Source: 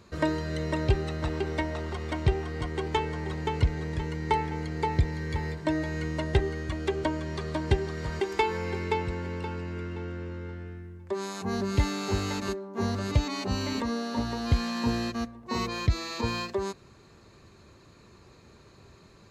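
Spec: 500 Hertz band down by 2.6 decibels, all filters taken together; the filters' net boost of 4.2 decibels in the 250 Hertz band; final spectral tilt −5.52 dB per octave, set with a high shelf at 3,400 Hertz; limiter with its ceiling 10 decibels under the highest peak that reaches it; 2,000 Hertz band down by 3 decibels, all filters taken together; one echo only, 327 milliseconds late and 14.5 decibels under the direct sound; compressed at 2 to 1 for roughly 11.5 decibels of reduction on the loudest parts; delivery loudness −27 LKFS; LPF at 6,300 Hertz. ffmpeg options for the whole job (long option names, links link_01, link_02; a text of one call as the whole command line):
ffmpeg -i in.wav -af "lowpass=6300,equalizer=frequency=250:width_type=o:gain=7.5,equalizer=frequency=500:width_type=o:gain=-7,equalizer=frequency=2000:width_type=o:gain=-6,highshelf=frequency=3400:gain=8.5,acompressor=threshold=-38dB:ratio=2,alimiter=level_in=5.5dB:limit=-24dB:level=0:latency=1,volume=-5.5dB,aecho=1:1:327:0.188,volume=12dB" out.wav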